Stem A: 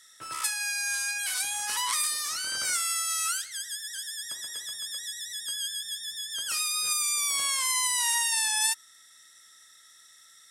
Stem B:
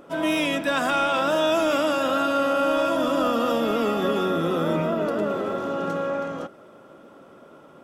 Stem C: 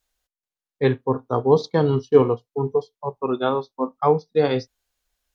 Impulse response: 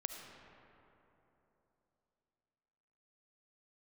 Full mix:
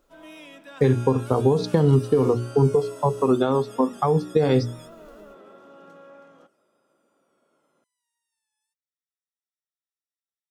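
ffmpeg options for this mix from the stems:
-filter_complex "[0:a]acompressor=threshold=-32dB:ratio=6,volume=-15dB[link_01];[1:a]highpass=frequency=760:poles=1,volume=-19.5dB[link_02];[2:a]bandreject=frequency=60:width_type=h:width=6,bandreject=frequency=120:width_type=h:width=6,bandreject=frequency=180:width_type=h:width=6,bandreject=frequency=240:width_type=h:width=6,bandreject=frequency=300:width_type=h:width=6,bandreject=frequency=360:width_type=h:width=6,bandreject=frequency=420:width_type=h:width=6,dynaudnorm=framelen=130:gausssize=5:maxgain=12dB,alimiter=limit=-11dB:level=0:latency=1:release=101,volume=1dB,asplit=2[link_03][link_04];[link_04]apad=whole_len=463479[link_05];[link_01][link_05]sidechaingate=range=-33dB:threshold=-50dB:ratio=16:detection=peak[link_06];[link_02][link_03]amix=inputs=2:normalize=0,acompressor=threshold=-20dB:ratio=6,volume=0dB[link_07];[link_06][link_07]amix=inputs=2:normalize=0,lowshelf=frequency=350:gain=11"

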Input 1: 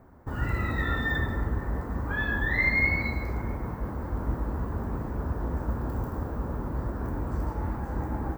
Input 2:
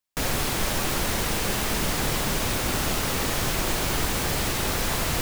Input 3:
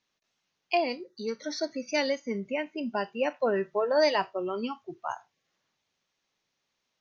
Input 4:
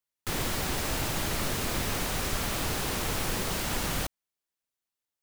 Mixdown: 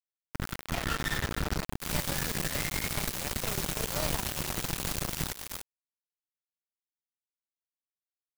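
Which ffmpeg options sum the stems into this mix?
ffmpeg -i stem1.wav -i stem2.wav -i stem3.wav -i stem4.wav -filter_complex "[0:a]dynaudnorm=framelen=200:gausssize=9:maxgain=10dB,equalizer=frequency=1400:width_type=o:width=0.29:gain=9,volume=-12.5dB,afade=type=out:start_time=1.49:duration=0.79:silence=0.316228,asplit=2[link_01][link_02];[link_02]volume=-17.5dB[link_03];[1:a]firequalizer=gain_entry='entry(100,0);entry(160,8);entry(310,-21)':delay=0.05:min_phase=1,adelay=100,volume=-5dB[link_04];[2:a]volume=-11.5dB[link_05];[3:a]highshelf=frequency=2200:gain=5,adelay=1550,volume=-6dB,asplit=2[link_06][link_07];[link_07]volume=-9dB[link_08];[link_03][link_08]amix=inputs=2:normalize=0,aecho=0:1:125:1[link_09];[link_01][link_04][link_05][link_06][link_09]amix=inputs=5:normalize=0,aeval=exprs='val(0)*gte(abs(val(0)),0.0531)':channel_layout=same" out.wav

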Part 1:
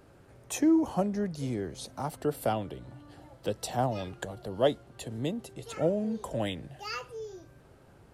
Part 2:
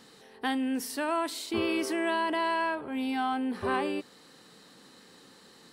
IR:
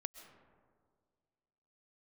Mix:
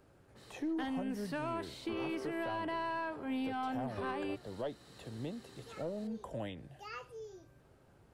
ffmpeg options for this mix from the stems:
-filter_complex "[0:a]acrossover=split=3200[link_01][link_02];[link_02]acompressor=threshold=-53dB:ratio=4:attack=1:release=60[link_03];[link_01][link_03]amix=inputs=2:normalize=0,volume=-7dB[link_04];[1:a]adynamicequalizer=threshold=0.00398:dfrequency=3200:dqfactor=0.7:tfrequency=3200:tqfactor=0.7:attack=5:release=100:ratio=0.375:range=3.5:mode=cutabove:tftype=highshelf,adelay=350,volume=-3dB[link_05];[link_04][link_05]amix=inputs=2:normalize=0,acrossover=split=4700[link_06][link_07];[link_07]acompressor=threshold=-55dB:ratio=4:attack=1:release=60[link_08];[link_06][link_08]amix=inputs=2:normalize=0,aeval=exprs='(tanh(12.6*val(0)+0.15)-tanh(0.15))/12.6':channel_layout=same,alimiter=level_in=6.5dB:limit=-24dB:level=0:latency=1:release=299,volume=-6.5dB"

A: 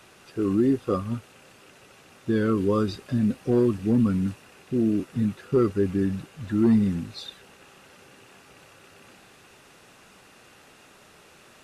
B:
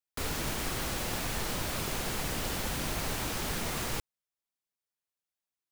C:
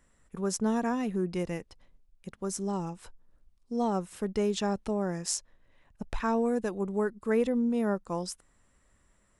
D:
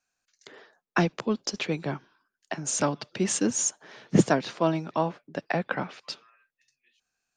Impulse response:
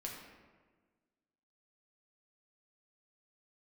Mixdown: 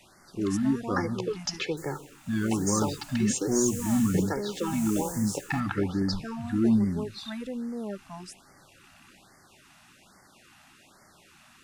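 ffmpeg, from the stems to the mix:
-filter_complex "[0:a]equalizer=frequency=460:width_type=o:width=0.33:gain=-12,bandreject=frequency=60:width_type=h:width=6,bandreject=frequency=120:width_type=h:width=6,volume=-2.5dB[link_01];[1:a]highshelf=frequency=5300:width_type=q:width=3:gain=10.5,tremolo=f=0.88:d=0.83,adelay=1600,volume=-12.5dB,afade=type=in:start_time=3:duration=0.58:silence=0.421697[link_02];[2:a]volume=-6.5dB[link_03];[3:a]aecho=1:1:2.3:0.95,acompressor=threshold=-25dB:ratio=6,volume=-3dB,asplit=2[link_04][link_05];[link_05]volume=-9.5dB[link_06];[4:a]atrim=start_sample=2205[link_07];[link_06][link_07]afir=irnorm=-1:irlink=0[link_08];[link_01][link_02][link_03][link_04][link_08]amix=inputs=5:normalize=0,afftfilt=real='re*(1-between(b*sr/1024,400*pow(3200/400,0.5+0.5*sin(2*PI*1.2*pts/sr))/1.41,400*pow(3200/400,0.5+0.5*sin(2*PI*1.2*pts/sr))*1.41))':imag='im*(1-between(b*sr/1024,400*pow(3200/400,0.5+0.5*sin(2*PI*1.2*pts/sr))/1.41,400*pow(3200/400,0.5+0.5*sin(2*PI*1.2*pts/sr))*1.41))':win_size=1024:overlap=0.75"

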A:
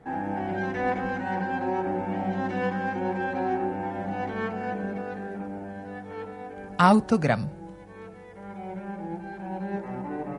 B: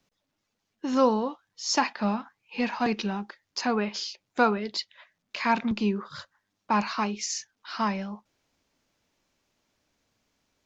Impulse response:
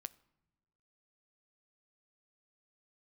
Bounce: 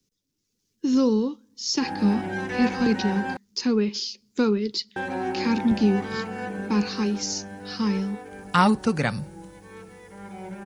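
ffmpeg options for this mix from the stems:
-filter_complex "[0:a]aemphasis=mode=production:type=75fm,adelay=1750,volume=-6dB,asplit=3[link_01][link_02][link_03];[link_01]atrim=end=3.37,asetpts=PTS-STARTPTS,afade=type=out:start_time=3.366:duration=0.004:curve=hsin[link_04];[link_02]atrim=start=3.37:end=4.96,asetpts=PTS-STARTPTS,volume=0[link_05];[link_03]atrim=start=4.96,asetpts=PTS-STARTPTS,afade=type=in:duration=0.004:curve=hsin[link_06];[link_04][link_05][link_06]concat=n=3:v=0:a=1[link_07];[1:a]firequalizer=gain_entry='entry(420,0);entry(650,-17);entry(5400,3)':delay=0.05:min_phase=1,acrossover=split=160[link_08][link_09];[link_09]acompressor=threshold=-23dB:ratio=6[link_10];[link_08][link_10]amix=inputs=2:normalize=0,volume=-2dB,asplit=2[link_11][link_12];[link_12]volume=-5dB[link_13];[2:a]atrim=start_sample=2205[link_14];[link_13][link_14]afir=irnorm=-1:irlink=0[link_15];[link_07][link_11][link_15]amix=inputs=3:normalize=0,acrossover=split=5300[link_16][link_17];[link_17]acompressor=threshold=-54dB:ratio=4:attack=1:release=60[link_18];[link_16][link_18]amix=inputs=2:normalize=0,equalizer=frequency=660:width=5.9:gain=-10.5,dynaudnorm=framelen=200:gausssize=5:maxgain=6.5dB"

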